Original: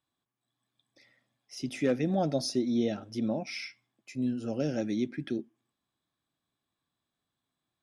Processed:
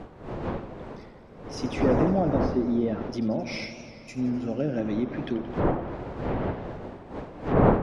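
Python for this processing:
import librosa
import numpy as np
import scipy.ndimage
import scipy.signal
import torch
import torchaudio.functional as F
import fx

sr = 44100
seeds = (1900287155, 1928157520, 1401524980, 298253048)

y = fx.dmg_wind(x, sr, seeds[0], corner_hz=530.0, level_db=-33.0)
y = fx.env_lowpass_down(y, sr, base_hz=1600.0, full_db=-24.5)
y = fx.echo_warbled(y, sr, ms=86, feedback_pct=78, rate_hz=2.8, cents=116, wet_db=-13)
y = y * librosa.db_to_amplitude(3.0)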